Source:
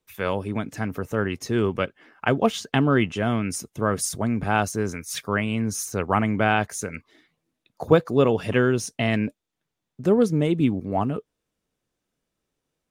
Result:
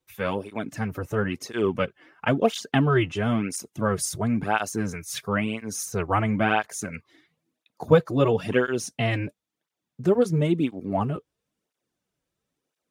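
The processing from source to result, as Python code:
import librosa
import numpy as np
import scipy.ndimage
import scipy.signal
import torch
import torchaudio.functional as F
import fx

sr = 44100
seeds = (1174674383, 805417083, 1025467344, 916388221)

y = fx.flanger_cancel(x, sr, hz=0.98, depth_ms=5.0)
y = y * librosa.db_to_amplitude(1.5)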